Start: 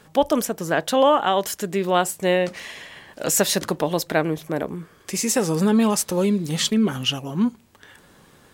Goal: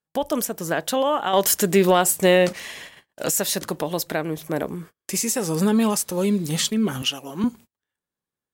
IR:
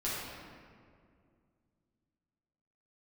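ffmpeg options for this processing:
-filter_complex "[0:a]asettb=1/sr,asplit=3[a][b][c];[a]atrim=end=7.024[d];[b]atrim=start=7.02:end=7.44,asetpts=PTS-STARTPTS,afade=t=in:d=0.004:c=qsin,afade=t=out:st=0.416:d=0.004:c=qsin,highpass=270[e];[c]atrim=start=7.436[f];[d][e]acrossfade=d=0.004:c1=hsin:c2=qsin[g];[g][f]acrossfade=d=0.004:c1=qsin:c2=hsin,agate=range=-39dB:threshold=-40dB:ratio=16:detection=peak,highshelf=f=7.9k:g=9,alimiter=limit=-12dB:level=0:latency=1:release=338,asettb=1/sr,asplit=3[h][i][j];[h]atrim=end=1.334[k];[i]atrim=start=1.33:end=2.53,asetpts=PTS-STARTPTS,afade=t=in:d=0.004:c=qsin,afade=t=out:st=1.196:d=0.004:c=qsin,acontrast=80[l];[j]atrim=start=2.526[m];[k][l]acrossfade=d=0.004:c1=hsin:c2=qsin[n];[n][m]acrossfade=d=0.004:c1=qsin:c2=hsin"

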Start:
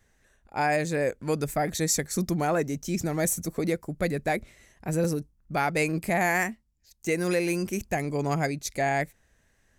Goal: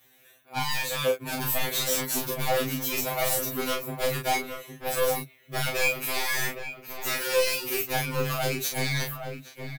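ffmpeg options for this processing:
-filter_complex "[0:a]highpass=f=330:p=1,acrossover=split=9900[a][b];[b]acompressor=threshold=-48dB:ratio=4:attack=1:release=60[c];[a][c]amix=inputs=2:normalize=0,superequalizer=12b=2.24:13b=2.51:16b=0.447,acontrast=71,alimiter=limit=-12dB:level=0:latency=1:release=21,aexciter=amount=7.3:drive=7:freq=9.7k,aeval=exprs='0.1*(abs(mod(val(0)/0.1+3,4)-2)-1)':c=same,asplit=2[d][e];[e]adelay=35,volume=-4dB[f];[d][f]amix=inputs=2:normalize=0,asplit=2[g][h];[h]adelay=816.3,volume=-7dB,highshelf=f=4k:g=-18.4[i];[g][i]amix=inputs=2:normalize=0,afftfilt=real='re*2.45*eq(mod(b,6),0)':imag='im*2.45*eq(mod(b,6),0)':win_size=2048:overlap=0.75"

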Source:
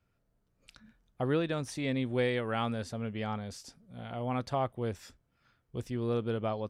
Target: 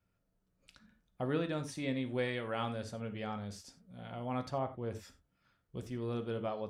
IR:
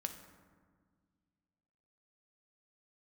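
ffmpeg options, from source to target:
-filter_complex "[0:a]asettb=1/sr,asplit=3[a][b][c];[a]atrim=end=4.514[d];[b]atrim=start=4.51:end=4.91,asetpts=PTS-STARTPTS,afade=t=in:d=0.004:c=qsin,afade=t=out:st=0.396:d=0.004:c=qsin,lowpass=f=1.7k:p=1[e];[c]atrim=start=4.906[f];[d][e]acrossfade=d=0.004:c1=hsin:c2=qsin[g];[g][f]acrossfade=d=0.004:c1=qsin:c2=hsin[h];[1:a]atrim=start_sample=2205,atrim=end_sample=4410[i];[h][i]afir=irnorm=-1:irlink=0,volume=-2.5dB"

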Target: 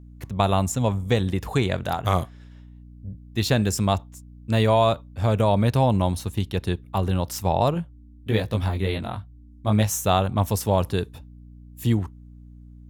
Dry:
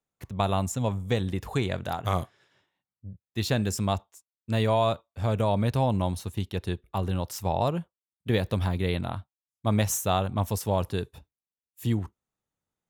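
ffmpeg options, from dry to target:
-filter_complex "[0:a]aeval=exprs='val(0)+0.00398*(sin(2*PI*60*n/s)+sin(2*PI*2*60*n/s)/2+sin(2*PI*3*60*n/s)/3+sin(2*PI*4*60*n/s)/4+sin(2*PI*5*60*n/s)/5)':c=same,asettb=1/sr,asplit=3[a][b][c];[a]atrim=end=7.744[d];[b]atrim=start=7.74:end=10.04,asetpts=PTS-STARTPTS,afade=t=in:d=0.004:c=qsin,afade=t=out:st=2.296:d=0.004:c=qsin,flanger=delay=18:depth=2.3:speed=1.4[e];[c]atrim=start=10.036[f];[d][e]acrossfade=d=0.004:c1=hsin:c2=qsin[g];[g][f]acrossfade=d=0.004:c1=qsin:c2=hsin,volume=5dB"

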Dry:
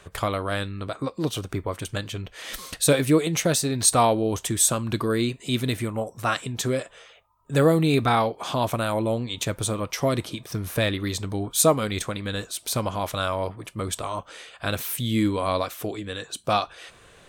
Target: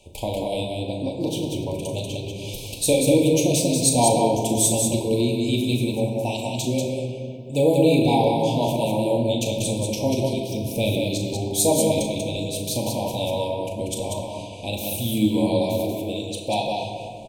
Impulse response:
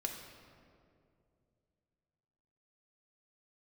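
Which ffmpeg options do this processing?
-filter_complex "[0:a]asuperstop=centerf=1500:order=20:qfactor=1.1,aecho=1:1:37.9|189.5:0.355|0.631[a];[1:a]atrim=start_sample=2205[b];[a][b]afir=irnorm=-1:irlink=0"

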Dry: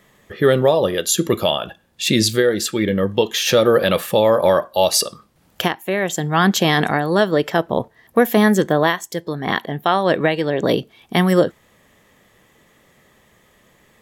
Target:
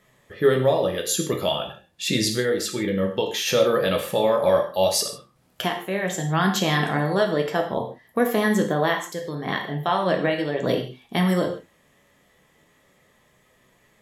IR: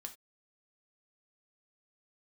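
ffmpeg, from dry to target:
-filter_complex "[0:a]flanger=delay=7.9:depth=6.3:regen=69:speed=0.37:shape=sinusoidal[a];[1:a]atrim=start_sample=2205,asetrate=25578,aresample=44100[b];[a][b]afir=irnorm=-1:irlink=0"

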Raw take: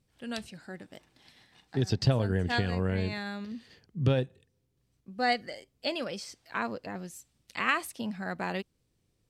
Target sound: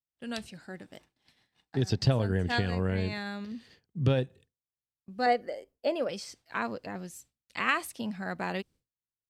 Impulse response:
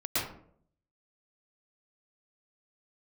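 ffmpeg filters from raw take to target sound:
-filter_complex "[0:a]asettb=1/sr,asplit=3[a][b][c];[a]atrim=end=5.264[d];[b]atrim=start=5.26:end=6.09,asetpts=PTS-STARTPTS,afade=t=in:d=0.004:c=qsin,afade=t=out:st=0.826:d=0.004:c=qsin,equalizer=f=125:t=o:w=1:g=-10,equalizer=f=500:t=o:w=1:g=8,equalizer=f=2k:t=o:w=1:g=-3,equalizer=f=4k:t=o:w=1:g=-9,equalizer=f=8k:t=o:w=1:g=-6[e];[c]atrim=start=6.086[f];[d][e]acrossfade=d=0.004:c1=hsin:c2=qsin[g];[g][f]acrossfade=d=0.004:c1=qsin:c2=hsin,agate=range=-33dB:threshold=-51dB:ratio=3:detection=peak"

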